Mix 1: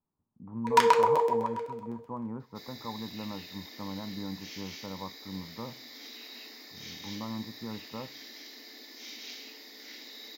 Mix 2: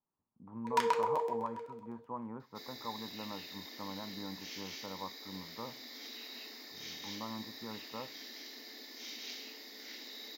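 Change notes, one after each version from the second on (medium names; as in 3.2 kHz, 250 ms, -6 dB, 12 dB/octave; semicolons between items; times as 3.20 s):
speech: add bass shelf 310 Hz -11 dB; first sound -9.0 dB; second sound: send -11.0 dB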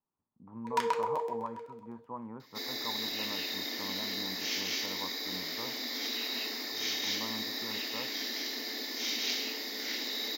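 second sound +12.0 dB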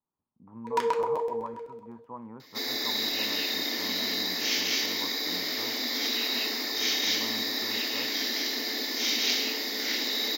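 first sound: remove high-pass 780 Hz 6 dB/octave; second sound +6.5 dB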